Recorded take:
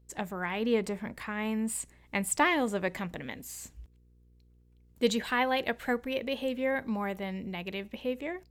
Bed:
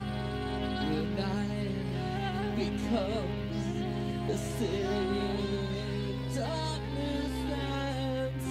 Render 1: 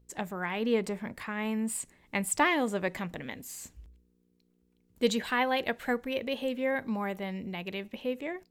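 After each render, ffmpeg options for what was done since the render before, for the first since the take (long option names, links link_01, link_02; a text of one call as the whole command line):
ffmpeg -i in.wav -af "bandreject=frequency=60:width_type=h:width=4,bandreject=frequency=120:width_type=h:width=4" out.wav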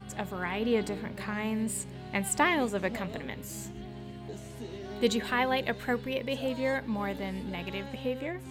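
ffmpeg -i in.wav -i bed.wav -filter_complex "[1:a]volume=-9.5dB[link_01];[0:a][link_01]amix=inputs=2:normalize=0" out.wav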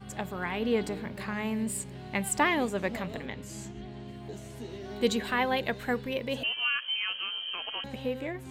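ffmpeg -i in.wav -filter_complex "[0:a]asettb=1/sr,asplit=3[link_01][link_02][link_03];[link_01]atrim=end=3.264[link_04];[link_02]atrim=start=3.26:end=4.08,asetpts=PTS-STARTPTS,afade=type=in:duration=0.004:curve=qsin,afade=type=out:start_time=0.816:duration=0.004:curve=qsin,lowpass=7600[link_05];[link_03]atrim=start=4.076[link_06];[link_04][link_05]acrossfade=duration=0.004:curve1=hsin:curve2=qsin[link_07];[link_07][link_06]acrossfade=duration=0.004:curve1=qsin:curve2=hsin,asettb=1/sr,asplit=3[link_08][link_09][link_10];[link_08]atrim=end=6.434[link_11];[link_09]atrim=start=6.43:end=7.84,asetpts=PTS-STARTPTS,afade=type=in:duration=0.004:curve=qsin,afade=type=out:start_time=1.406:duration=0.004:curve=qsin,lowpass=frequency=2800:width_type=q:width=0.5098,lowpass=frequency=2800:width_type=q:width=0.6013,lowpass=frequency=2800:width_type=q:width=0.9,lowpass=frequency=2800:width_type=q:width=2.563,afreqshift=-3300[link_12];[link_10]atrim=start=7.836[link_13];[link_11][link_12]acrossfade=duration=0.004:curve1=hsin:curve2=qsin[link_14];[link_14][link_13]acrossfade=duration=0.004:curve1=qsin:curve2=hsin" out.wav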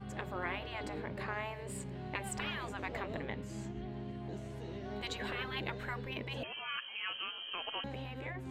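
ffmpeg -i in.wav -af "lowpass=frequency=1900:poles=1,afftfilt=real='re*lt(hypot(re,im),0.0891)':imag='im*lt(hypot(re,im),0.0891)':win_size=1024:overlap=0.75" out.wav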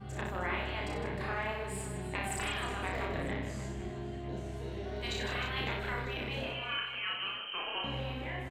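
ffmpeg -i in.wav -filter_complex "[0:a]asplit=2[link_01][link_02];[link_02]adelay=32,volume=-2.5dB[link_03];[link_01][link_03]amix=inputs=2:normalize=0,aecho=1:1:60|156|309.6|555.4|948.6:0.631|0.398|0.251|0.158|0.1" out.wav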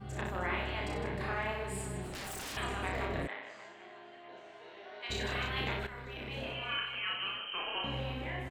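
ffmpeg -i in.wav -filter_complex "[0:a]asettb=1/sr,asplit=3[link_01][link_02][link_03];[link_01]atrim=end=2.034[link_04];[link_02]atrim=start=2.03:end=2.57,asetpts=PTS-STARTPTS,afade=type=in:duration=0.004:curve=qsin,afade=type=out:start_time=0.536:duration=0.004:curve=qsin,aeval=exprs='0.0141*(abs(mod(val(0)/0.0141+3,4)-2)-1)':channel_layout=same[link_05];[link_03]atrim=start=2.566[link_06];[link_04][link_05]acrossfade=duration=0.004:curve1=hsin:curve2=qsin[link_07];[link_07][link_06]acrossfade=duration=0.004:curve1=qsin:curve2=hsin,asplit=3[link_08][link_09][link_10];[link_08]afade=type=out:start_time=3.26:duration=0.02[link_11];[link_09]highpass=780,lowpass=3300,afade=type=in:start_time=3.26:duration=0.02,afade=type=out:start_time=5.09:duration=0.02[link_12];[link_10]afade=type=in:start_time=5.09:duration=0.02[link_13];[link_11][link_12][link_13]amix=inputs=3:normalize=0,asplit=2[link_14][link_15];[link_14]atrim=end=5.87,asetpts=PTS-STARTPTS,afade=type=out:start_time=5.866:duration=0.004:curve=hsin:silence=0.251189[link_16];[link_15]atrim=start=5.87,asetpts=PTS-STARTPTS,afade=type=in:duration=0.84:silence=0.251189[link_17];[link_16][link_17]concat=n=2:v=0:a=1" out.wav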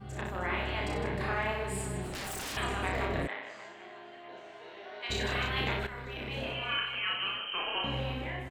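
ffmpeg -i in.wav -af "dynaudnorm=framelen=370:gausssize=3:maxgain=3.5dB" out.wav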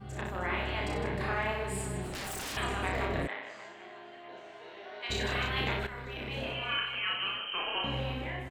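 ffmpeg -i in.wav -af anull out.wav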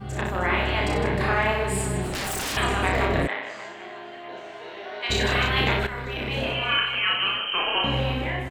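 ffmpeg -i in.wav -af "volume=9.5dB" out.wav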